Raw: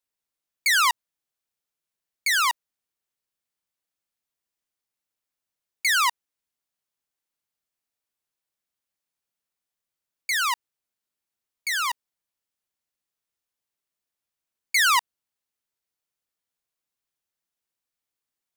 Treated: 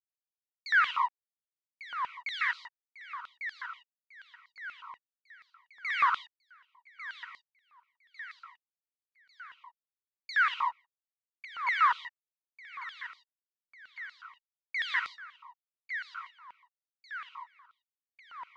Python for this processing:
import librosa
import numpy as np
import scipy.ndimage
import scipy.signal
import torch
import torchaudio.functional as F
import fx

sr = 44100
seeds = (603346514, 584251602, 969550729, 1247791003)

p1 = fx.high_shelf(x, sr, hz=4700.0, db=-7.0)
p2 = fx.over_compress(p1, sr, threshold_db=-28.0, ratio=-0.5)
p3 = p1 + F.gain(torch.from_numpy(p2), -1.5).numpy()
p4 = fx.backlash(p3, sr, play_db=-34.0)
p5 = fx.spacing_loss(p4, sr, db_at_10k=41)
p6 = p5 + fx.echo_feedback(p5, sr, ms=1148, feedback_pct=52, wet_db=-11, dry=0)
p7 = fx.rev_gated(p6, sr, seeds[0], gate_ms=180, shape='rising', drr_db=5.0)
p8 = fx.filter_held_highpass(p7, sr, hz=8.3, low_hz=980.0, high_hz=4300.0)
y = F.gain(torch.from_numpy(p8), -6.0).numpy()